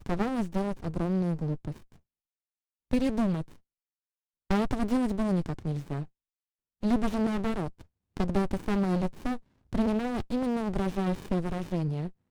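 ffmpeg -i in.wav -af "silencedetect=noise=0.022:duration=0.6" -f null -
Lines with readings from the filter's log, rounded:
silence_start: 1.72
silence_end: 2.91 | silence_duration: 1.19
silence_start: 3.42
silence_end: 4.51 | silence_duration: 1.09
silence_start: 6.03
silence_end: 6.83 | silence_duration: 0.80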